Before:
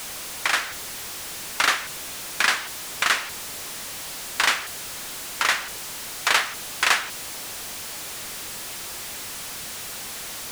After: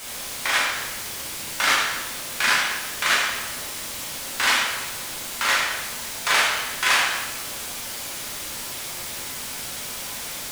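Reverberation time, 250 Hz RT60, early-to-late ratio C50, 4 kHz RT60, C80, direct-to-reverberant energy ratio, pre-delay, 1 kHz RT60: 1.1 s, 1.1 s, 1.0 dB, 1.0 s, 3.0 dB, −5.5 dB, 7 ms, 1.1 s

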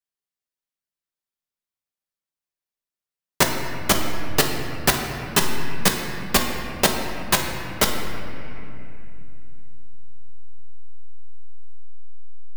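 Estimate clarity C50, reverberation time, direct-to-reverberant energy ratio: 4.0 dB, 2.8 s, 1.0 dB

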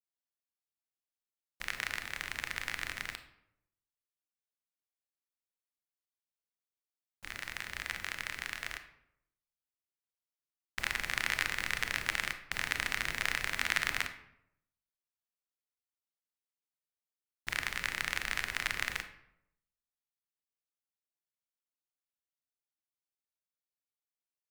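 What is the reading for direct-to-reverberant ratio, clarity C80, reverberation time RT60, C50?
8.0 dB, 13.5 dB, 0.80 s, 11.0 dB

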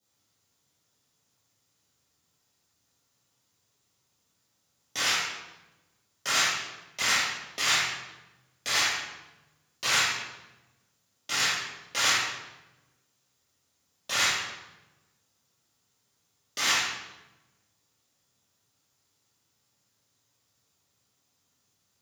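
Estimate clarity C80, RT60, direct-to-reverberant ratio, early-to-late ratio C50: 2.5 dB, 1.0 s, −9.5 dB, −1.0 dB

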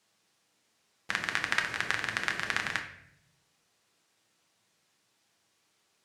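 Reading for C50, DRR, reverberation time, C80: 8.5 dB, 3.0 dB, 0.70 s, 11.5 dB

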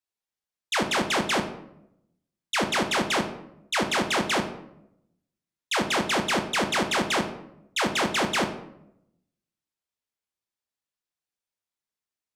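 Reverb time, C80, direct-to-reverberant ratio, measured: 0.80 s, 13.0 dB, 4.5 dB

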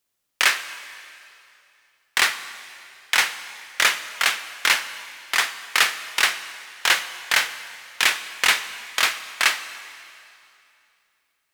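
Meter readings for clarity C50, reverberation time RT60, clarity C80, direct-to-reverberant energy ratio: 12.5 dB, 2.7 s, 13.0 dB, 11.5 dB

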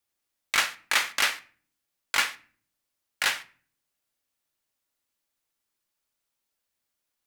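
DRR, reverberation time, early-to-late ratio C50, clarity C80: 10.5 dB, 0.45 s, 19.0 dB, 23.0 dB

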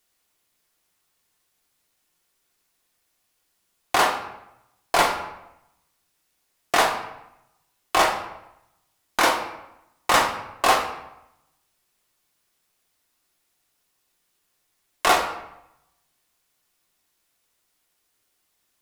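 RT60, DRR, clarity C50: 0.85 s, 1.5 dB, 7.5 dB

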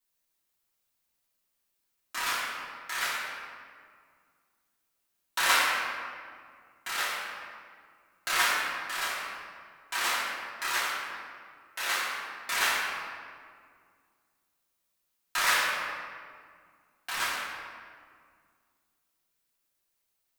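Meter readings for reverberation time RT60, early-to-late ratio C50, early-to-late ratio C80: 2.0 s, −1.0 dB, 0.5 dB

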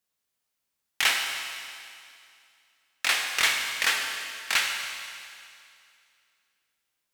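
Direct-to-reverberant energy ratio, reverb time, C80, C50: 2.0 dB, 2.4 s, 4.5 dB, 3.5 dB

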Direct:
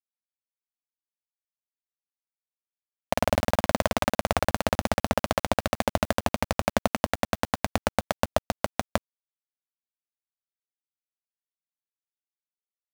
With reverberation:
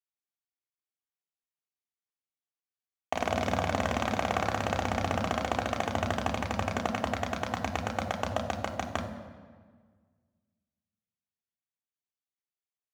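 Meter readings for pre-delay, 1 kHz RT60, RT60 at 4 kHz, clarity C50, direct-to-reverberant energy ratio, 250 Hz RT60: 3 ms, 1.5 s, 1.1 s, 9.0 dB, −1.5 dB, 2.0 s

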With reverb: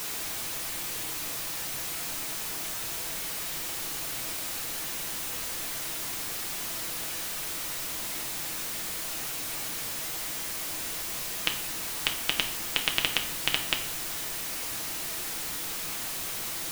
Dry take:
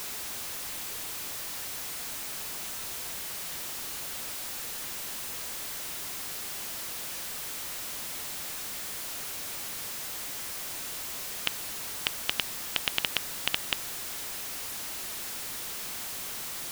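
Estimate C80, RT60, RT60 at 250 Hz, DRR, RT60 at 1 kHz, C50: 13.5 dB, 0.70 s, 0.85 s, 2.5 dB, 0.60 s, 10.5 dB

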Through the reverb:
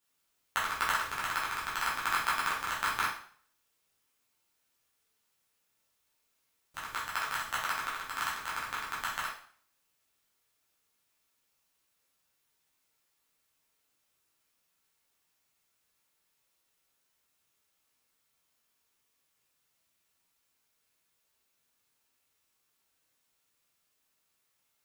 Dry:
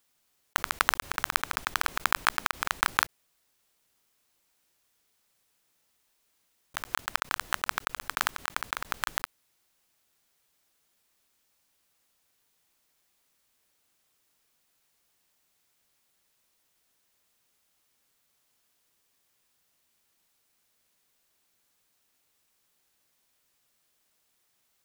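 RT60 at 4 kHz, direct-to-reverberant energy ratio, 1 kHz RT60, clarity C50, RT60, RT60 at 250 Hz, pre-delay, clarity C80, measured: 0.50 s, −8.0 dB, 0.50 s, 4.0 dB, 0.50 s, 0.50 s, 5 ms, 9.5 dB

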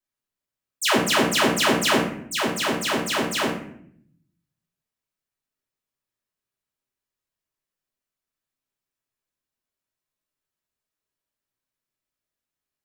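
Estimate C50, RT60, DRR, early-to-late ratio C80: 5.0 dB, 0.65 s, −4.5 dB, 9.0 dB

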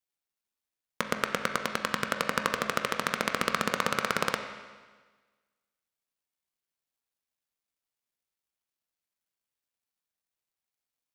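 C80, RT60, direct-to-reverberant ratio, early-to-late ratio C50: 8.5 dB, 1.4 s, 5.0 dB, 7.5 dB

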